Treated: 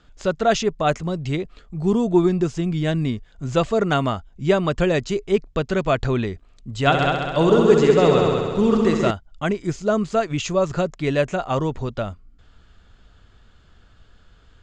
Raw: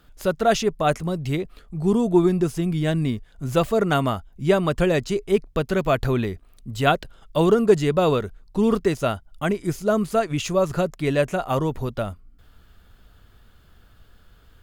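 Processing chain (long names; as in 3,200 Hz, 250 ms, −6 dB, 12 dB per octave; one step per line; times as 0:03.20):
elliptic low-pass filter 7,400 Hz, stop band 60 dB
0:06.79–0:09.11: echo machine with several playback heads 66 ms, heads all three, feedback 58%, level −7.5 dB
level +1.5 dB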